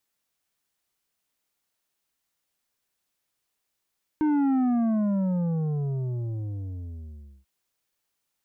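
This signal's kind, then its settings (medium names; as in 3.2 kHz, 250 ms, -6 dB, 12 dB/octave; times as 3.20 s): sub drop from 310 Hz, over 3.24 s, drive 8 dB, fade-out 2.91 s, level -21 dB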